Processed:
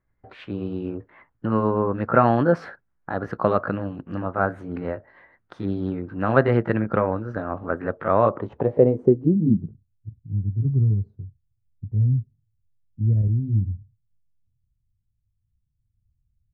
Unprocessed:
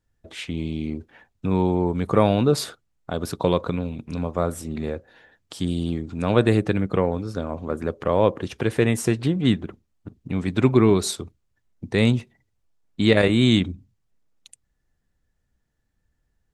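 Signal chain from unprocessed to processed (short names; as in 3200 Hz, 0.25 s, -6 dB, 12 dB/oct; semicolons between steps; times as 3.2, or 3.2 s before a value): gliding pitch shift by +3 st ending unshifted; low-pass sweep 1500 Hz -> 110 Hz, 8.21–9.89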